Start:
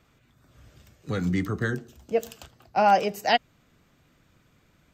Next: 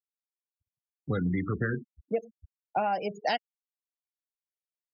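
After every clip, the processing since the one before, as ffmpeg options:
ffmpeg -i in.wav -af "afftfilt=real='re*gte(hypot(re,im),0.0355)':imag='im*gte(hypot(re,im),0.0355)':win_size=1024:overlap=0.75,agate=range=-33dB:threshold=-48dB:ratio=3:detection=peak,acompressor=threshold=-27dB:ratio=10,volume=2dB" out.wav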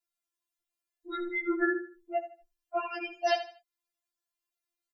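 ffmpeg -i in.wav -filter_complex "[0:a]alimiter=limit=-21.5dB:level=0:latency=1:release=431,asplit=2[link_01][link_02];[link_02]aecho=0:1:78|156|234:0.251|0.0728|0.0211[link_03];[link_01][link_03]amix=inputs=2:normalize=0,afftfilt=real='re*4*eq(mod(b,16),0)':imag='im*4*eq(mod(b,16),0)':win_size=2048:overlap=0.75,volume=7.5dB" out.wav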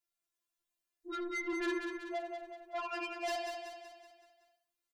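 ffmpeg -i in.wav -filter_complex "[0:a]asoftclip=type=tanh:threshold=-33dB,asplit=2[link_01][link_02];[link_02]aecho=0:1:188|376|564|752|940|1128:0.501|0.256|0.13|0.0665|0.0339|0.0173[link_03];[link_01][link_03]amix=inputs=2:normalize=0,volume=-1dB" out.wav

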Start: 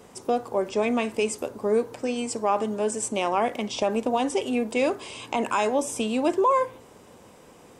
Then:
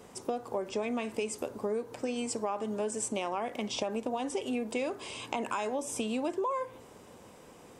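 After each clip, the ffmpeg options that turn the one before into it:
ffmpeg -i in.wav -af "acompressor=threshold=-27dB:ratio=6,volume=-2.5dB" out.wav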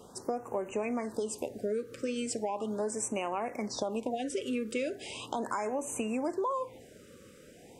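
ffmpeg -i in.wav -af "afftfilt=real='re*(1-between(b*sr/1024,790*pow(4300/790,0.5+0.5*sin(2*PI*0.38*pts/sr))/1.41,790*pow(4300/790,0.5+0.5*sin(2*PI*0.38*pts/sr))*1.41))':imag='im*(1-between(b*sr/1024,790*pow(4300/790,0.5+0.5*sin(2*PI*0.38*pts/sr))/1.41,790*pow(4300/790,0.5+0.5*sin(2*PI*0.38*pts/sr))*1.41))':win_size=1024:overlap=0.75" out.wav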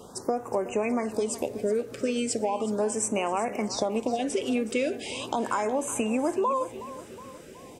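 ffmpeg -i in.wav -af "aecho=1:1:368|736|1104|1472|1840:0.178|0.0942|0.05|0.0265|0.014,volume=6dB" out.wav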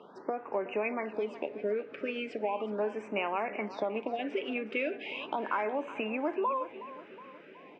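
ffmpeg -i in.wav -af "highpass=frequency=220:width=0.5412,highpass=frequency=220:width=1.3066,equalizer=frequency=240:width_type=q:width=4:gain=-9,equalizer=frequency=350:width_type=q:width=4:gain=-5,equalizer=frequency=500:width_type=q:width=4:gain=-7,equalizer=frequency=750:width_type=q:width=4:gain=-5,equalizer=frequency=1100:width_type=q:width=4:gain=-4,equalizer=frequency=2500:width_type=q:width=4:gain=4,lowpass=frequency=2600:width=0.5412,lowpass=frequency=2600:width=1.3066" out.wav

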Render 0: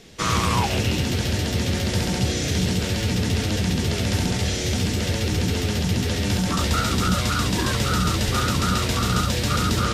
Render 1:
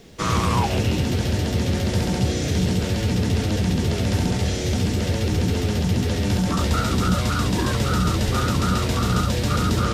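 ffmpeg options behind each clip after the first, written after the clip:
ffmpeg -i in.wav -filter_complex "[0:a]acrossover=split=1200[link_01][link_02];[link_01]acontrast=36[link_03];[link_03][link_02]amix=inputs=2:normalize=0,acrusher=bits=9:mix=0:aa=0.000001,volume=-3.5dB" out.wav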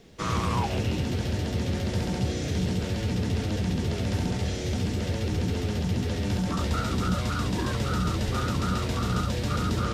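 ffmpeg -i in.wav -af "highshelf=frequency=7300:gain=-5.5,volume=-6dB" out.wav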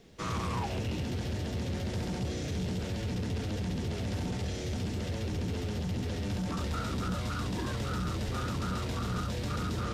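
ffmpeg -i in.wav -af "asoftclip=type=tanh:threshold=-23dB,volume=-4dB" out.wav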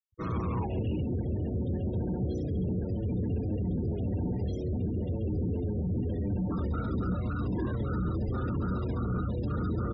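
ffmpeg -i in.wav -af "afftfilt=real='re*gte(hypot(re,im),0.0178)':imag='im*gte(hypot(re,im),0.0178)':win_size=1024:overlap=0.75,firequalizer=gain_entry='entry(210,0);entry(320,3);entry(650,-5)':delay=0.05:min_phase=1,volume=3dB" out.wav

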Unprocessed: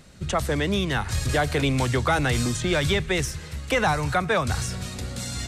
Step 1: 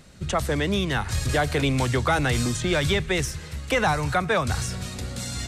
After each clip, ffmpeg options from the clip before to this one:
ffmpeg -i in.wav -af anull out.wav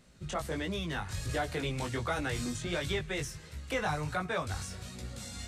ffmpeg -i in.wav -af "flanger=delay=16.5:depth=4.1:speed=1.4,volume=-7.5dB" out.wav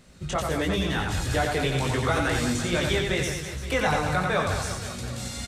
ffmpeg -i in.wav -af "aecho=1:1:90|202.5|343.1|518.9|738.6:0.631|0.398|0.251|0.158|0.1,volume=7dB" out.wav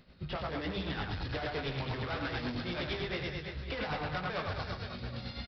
ffmpeg -i in.wav -af "aresample=11025,volume=27.5dB,asoftclip=hard,volume=-27.5dB,aresample=44100,tremolo=f=8.9:d=0.52,volume=-4dB" out.wav

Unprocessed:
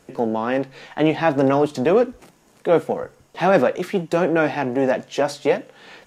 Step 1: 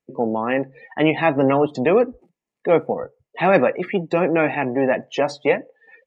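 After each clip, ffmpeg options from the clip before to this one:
ffmpeg -i in.wav -af "afftdn=noise_reduction=33:noise_floor=-35,equalizer=frequency=2200:width_type=o:width=0.83:gain=7.5,bandreject=frequency=1500:width=6.8" out.wav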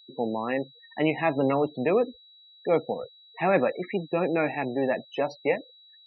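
ffmpeg -i in.wav -af "afftdn=noise_reduction=20:noise_floor=-29,aeval=exprs='val(0)+0.00562*sin(2*PI*3900*n/s)':channel_layout=same,afftfilt=real='re*gte(hypot(re,im),0.0112)':imag='im*gte(hypot(re,im),0.0112)':win_size=1024:overlap=0.75,volume=-7dB" out.wav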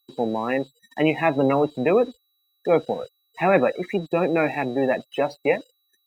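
ffmpeg -i in.wav -af "aeval=exprs='sgn(val(0))*max(abs(val(0))-0.00211,0)':channel_layout=same,volume=4.5dB" out.wav

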